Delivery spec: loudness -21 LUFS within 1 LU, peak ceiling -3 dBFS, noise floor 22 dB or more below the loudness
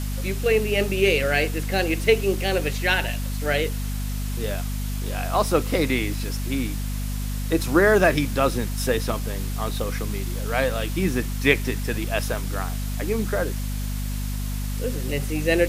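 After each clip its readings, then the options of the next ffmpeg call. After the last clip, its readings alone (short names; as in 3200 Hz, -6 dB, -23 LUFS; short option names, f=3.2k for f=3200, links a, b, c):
hum 50 Hz; harmonics up to 250 Hz; hum level -25 dBFS; noise floor -27 dBFS; noise floor target -46 dBFS; loudness -24.0 LUFS; peak -2.5 dBFS; loudness target -21.0 LUFS
-> -af "bandreject=f=50:t=h:w=4,bandreject=f=100:t=h:w=4,bandreject=f=150:t=h:w=4,bandreject=f=200:t=h:w=4,bandreject=f=250:t=h:w=4"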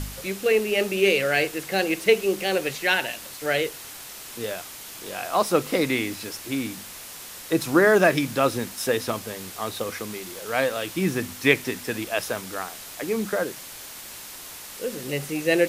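hum none; noise floor -40 dBFS; noise floor target -47 dBFS
-> -af "afftdn=nr=7:nf=-40"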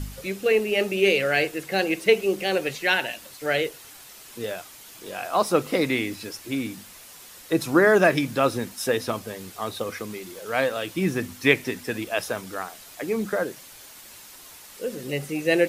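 noise floor -46 dBFS; noise floor target -47 dBFS
-> -af "afftdn=nr=6:nf=-46"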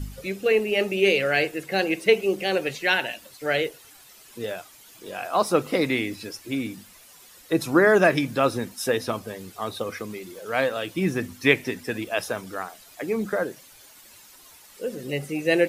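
noise floor -50 dBFS; loudness -24.5 LUFS; peak -3.0 dBFS; loudness target -21.0 LUFS
-> -af "volume=3.5dB,alimiter=limit=-3dB:level=0:latency=1"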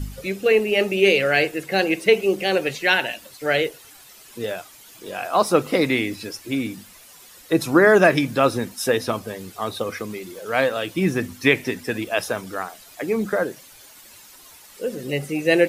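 loudness -21.5 LUFS; peak -3.0 dBFS; noise floor -47 dBFS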